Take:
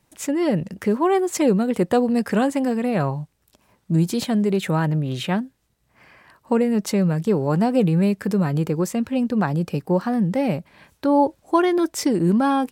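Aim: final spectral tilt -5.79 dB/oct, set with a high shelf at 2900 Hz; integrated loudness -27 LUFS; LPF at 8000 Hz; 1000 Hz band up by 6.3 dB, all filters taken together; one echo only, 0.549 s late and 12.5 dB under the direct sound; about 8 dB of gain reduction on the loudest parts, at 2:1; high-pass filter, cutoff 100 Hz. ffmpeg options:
-af "highpass=100,lowpass=8k,equalizer=f=1k:t=o:g=7.5,highshelf=f=2.9k:g=4.5,acompressor=threshold=-22dB:ratio=2,aecho=1:1:549:0.237,volume=-3dB"

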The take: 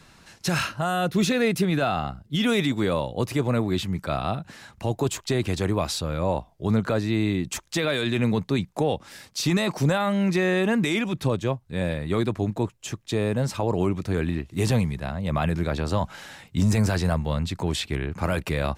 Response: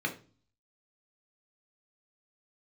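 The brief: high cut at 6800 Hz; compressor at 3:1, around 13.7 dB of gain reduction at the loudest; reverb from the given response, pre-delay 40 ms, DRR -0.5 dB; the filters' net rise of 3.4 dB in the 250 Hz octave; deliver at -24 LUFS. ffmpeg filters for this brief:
-filter_complex "[0:a]lowpass=6.8k,equalizer=f=250:t=o:g=4.5,acompressor=threshold=-35dB:ratio=3,asplit=2[a][b];[1:a]atrim=start_sample=2205,adelay=40[c];[b][c]afir=irnorm=-1:irlink=0,volume=-5.5dB[d];[a][d]amix=inputs=2:normalize=0,volume=7.5dB"

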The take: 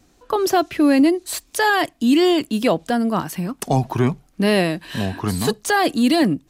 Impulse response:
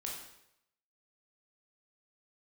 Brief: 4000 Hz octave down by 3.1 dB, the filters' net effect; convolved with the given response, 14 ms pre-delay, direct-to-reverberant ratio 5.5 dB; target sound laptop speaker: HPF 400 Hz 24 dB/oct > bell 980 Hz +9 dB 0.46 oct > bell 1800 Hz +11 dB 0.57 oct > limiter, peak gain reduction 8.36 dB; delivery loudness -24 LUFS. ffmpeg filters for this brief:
-filter_complex "[0:a]equalizer=f=4k:t=o:g=-6,asplit=2[a][b];[1:a]atrim=start_sample=2205,adelay=14[c];[b][c]afir=irnorm=-1:irlink=0,volume=-5.5dB[d];[a][d]amix=inputs=2:normalize=0,highpass=f=400:w=0.5412,highpass=f=400:w=1.3066,equalizer=f=980:t=o:w=0.46:g=9,equalizer=f=1.8k:t=o:w=0.57:g=11,volume=-4dB,alimiter=limit=-12dB:level=0:latency=1"

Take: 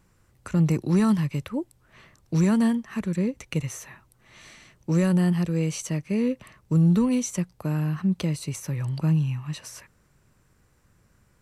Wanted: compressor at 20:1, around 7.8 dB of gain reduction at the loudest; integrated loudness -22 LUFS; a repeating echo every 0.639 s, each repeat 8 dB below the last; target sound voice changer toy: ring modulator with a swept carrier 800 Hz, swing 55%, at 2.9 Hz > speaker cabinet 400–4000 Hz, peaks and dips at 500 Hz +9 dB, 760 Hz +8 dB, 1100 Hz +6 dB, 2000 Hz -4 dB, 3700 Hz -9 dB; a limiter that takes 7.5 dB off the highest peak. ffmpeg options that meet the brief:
-af "acompressor=threshold=-24dB:ratio=20,alimiter=limit=-23dB:level=0:latency=1,aecho=1:1:639|1278|1917|2556|3195:0.398|0.159|0.0637|0.0255|0.0102,aeval=exprs='val(0)*sin(2*PI*800*n/s+800*0.55/2.9*sin(2*PI*2.9*n/s))':c=same,highpass=400,equalizer=f=500:t=q:w=4:g=9,equalizer=f=760:t=q:w=4:g=8,equalizer=f=1.1k:t=q:w=4:g=6,equalizer=f=2k:t=q:w=4:g=-4,equalizer=f=3.7k:t=q:w=4:g=-9,lowpass=f=4k:w=0.5412,lowpass=f=4k:w=1.3066,volume=7.5dB"

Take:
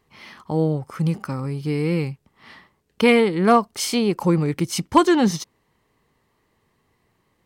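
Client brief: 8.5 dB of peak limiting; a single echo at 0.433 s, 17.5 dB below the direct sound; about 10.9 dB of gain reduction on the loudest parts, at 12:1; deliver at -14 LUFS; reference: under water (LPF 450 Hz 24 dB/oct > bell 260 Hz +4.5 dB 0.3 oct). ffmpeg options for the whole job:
-af "acompressor=threshold=-21dB:ratio=12,alimiter=limit=-20dB:level=0:latency=1,lowpass=f=450:w=0.5412,lowpass=f=450:w=1.3066,equalizer=f=260:t=o:w=0.3:g=4.5,aecho=1:1:433:0.133,volume=16.5dB"

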